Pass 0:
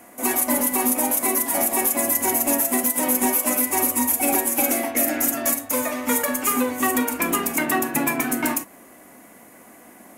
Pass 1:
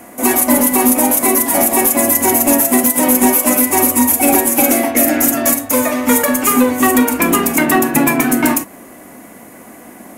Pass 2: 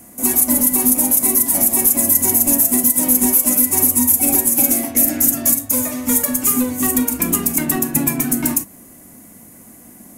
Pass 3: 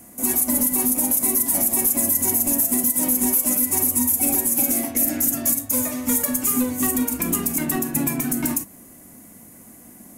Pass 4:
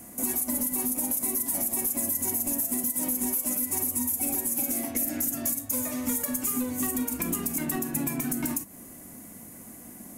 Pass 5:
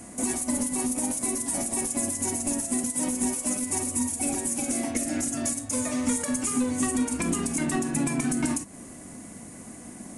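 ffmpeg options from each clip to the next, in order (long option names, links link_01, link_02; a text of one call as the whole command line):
ffmpeg -i in.wav -af "lowshelf=frequency=450:gain=5,acontrast=37,volume=2.5dB" out.wav
ffmpeg -i in.wav -af "bass=frequency=250:gain=15,treble=frequency=4000:gain=14,volume=-13.5dB" out.wav
ffmpeg -i in.wav -af "alimiter=level_in=5.5dB:limit=-1dB:release=50:level=0:latency=1,volume=-8.5dB" out.wav
ffmpeg -i in.wav -af "acompressor=threshold=-29dB:ratio=2.5" out.wav
ffmpeg -i in.wav -af "aresample=22050,aresample=44100,volume=4.5dB" out.wav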